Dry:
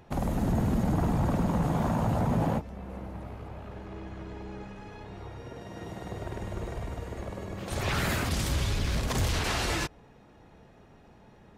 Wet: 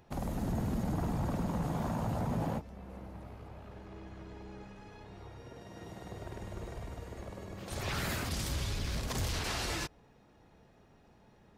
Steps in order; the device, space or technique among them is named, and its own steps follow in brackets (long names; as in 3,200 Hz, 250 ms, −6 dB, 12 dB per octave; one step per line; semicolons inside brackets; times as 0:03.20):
presence and air boost (parametric band 4,900 Hz +3 dB 0.77 octaves; high-shelf EQ 9,700 Hz +5 dB)
level −7 dB